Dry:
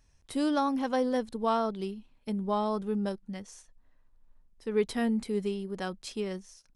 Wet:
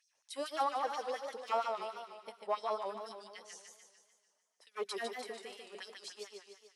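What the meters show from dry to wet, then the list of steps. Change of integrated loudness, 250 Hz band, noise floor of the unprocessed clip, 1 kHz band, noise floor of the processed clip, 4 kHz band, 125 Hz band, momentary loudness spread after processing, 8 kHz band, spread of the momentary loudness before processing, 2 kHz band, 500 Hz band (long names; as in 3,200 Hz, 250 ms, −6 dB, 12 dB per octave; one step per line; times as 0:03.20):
−8.5 dB, −24.5 dB, −66 dBFS, −3.5 dB, −79 dBFS, −3.0 dB, below −30 dB, 15 LU, −3.0 dB, 12 LU, −4.5 dB, −8.5 dB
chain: fade-out on the ending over 1.09 s
asymmetric clip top −24 dBFS, bottom −20 dBFS
mains-hum notches 50/100/150/200/250/300/350/400 Hz
soft clipping −20 dBFS, distortion −23 dB
auto-filter high-pass sine 4.3 Hz 530–5,800 Hz
on a send: feedback echo with a high-pass in the loop 117 ms, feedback 72%, high-pass 870 Hz, level −19.5 dB
on the sum: feedback echo with a swinging delay time 148 ms, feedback 55%, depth 152 cents, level −4.5 dB
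level −6 dB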